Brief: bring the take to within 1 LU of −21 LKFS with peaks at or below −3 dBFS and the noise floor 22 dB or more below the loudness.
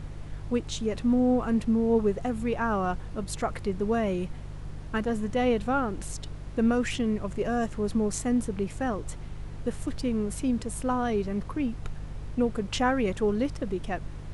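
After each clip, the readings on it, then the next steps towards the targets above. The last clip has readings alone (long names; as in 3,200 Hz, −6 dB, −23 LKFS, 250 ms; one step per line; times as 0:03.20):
mains hum 50 Hz; hum harmonics up to 150 Hz; level of the hum −38 dBFS; background noise floor −40 dBFS; target noise floor −51 dBFS; integrated loudness −28.5 LKFS; sample peak −13.0 dBFS; target loudness −21.0 LKFS
→ hum removal 50 Hz, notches 3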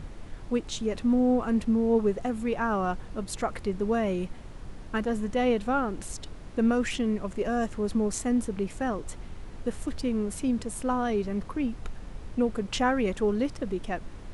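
mains hum none found; background noise floor −43 dBFS; target noise floor −51 dBFS
→ noise reduction from a noise print 8 dB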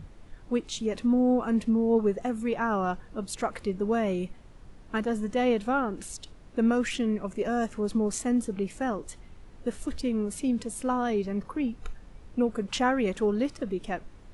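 background noise floor −50 dBFS; target noise floor −51 dBFS
→ noise reduction from a noise print 6 dB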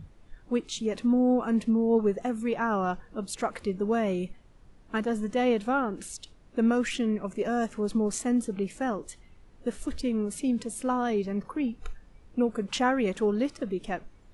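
background noise floor −55 dBFS; integrated loudness −28.5 LKFS; sample peak −13.5 dBFS; target loudness −21.0 LKFS
→ level +7.5 dB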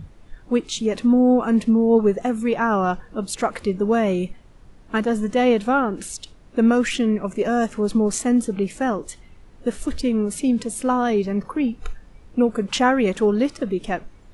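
integrated loudness −21.0 LKFS; sample peak −6.0 dBFS; background noise floor −47 dBFS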